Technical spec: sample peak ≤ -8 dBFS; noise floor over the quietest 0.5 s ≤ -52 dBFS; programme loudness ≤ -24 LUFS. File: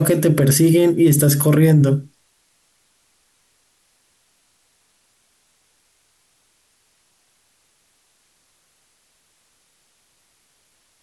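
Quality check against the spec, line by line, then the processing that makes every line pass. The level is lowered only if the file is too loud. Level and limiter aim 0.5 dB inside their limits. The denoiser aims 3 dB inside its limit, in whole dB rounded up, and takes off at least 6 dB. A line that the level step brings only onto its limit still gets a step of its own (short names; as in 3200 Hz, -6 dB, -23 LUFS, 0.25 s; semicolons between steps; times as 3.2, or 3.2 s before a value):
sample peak -6.0 dBFS: fail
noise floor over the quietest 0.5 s -63 dBFS: OK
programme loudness -14.5 LUFS: fail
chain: gain -10 dB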